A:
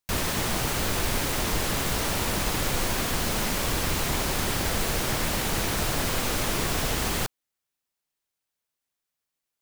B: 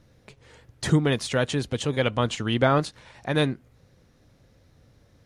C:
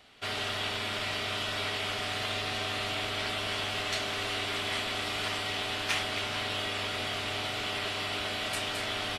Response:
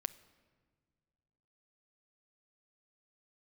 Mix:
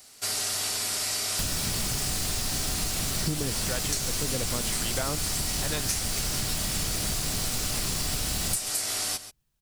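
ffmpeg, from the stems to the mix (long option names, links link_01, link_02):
-filter_complex "[0:a]bandreject=frequency=2100:width=12,acrossover=split=250|3100[link_01][link_02][link_03];[link_01]acompressor=threshold=-28dB:ratio=4[link_04];[link_02]acompressor=threshold=-45dB:ratio=4[link_05];[link_03]acompressor=threshold=-34dB:ratio=4[link_06];[link_04][link_05][link_06]amix=inputs=3:normalize=0,adelay=1300,volume=2.5dB,asplit=3[link_07][link_08][link_09];[link_08]volume=-13.5dB[link_10];[link_09]volume=-14.5dB[link_11];[1:a]acrossover=split=600[link_12][link_13];[link_12]aeval=exprs='val(0)*(1-0.7/2+0.7/2*cos(2*PI*1*n/s))':channel_layout=same[link_14];[link_13]aeval=exprs='val(0)*(1-0.7/2-0.7/2*cos(2*PI*1*n/s))':channel_layout=same[link_15];[link_14][link_15]amix=inputs=2:normalize=0,adelay=2350,volume=-1.5dB[link_16];[2:a]aexciter=amount=13.2:drive=4.6:freq=4900,volume=-1.5dB,asplit=2[link_17][link_18];[link_18]volume=-15dB[link_19];[3:a]atrim=start_sample=2205[link_20];[link_10][link_20]afir=irnorm=-1:irlink=0[link_21];[link_11][link_19]amix=inputs=2:normalize=0,aecho=0:1:134:1[link_22];[link_07][link_16][link_17][link_21][link_22]amix=inputs=5:normalize=0,acompressor=threshold=-25dB:ratio=6"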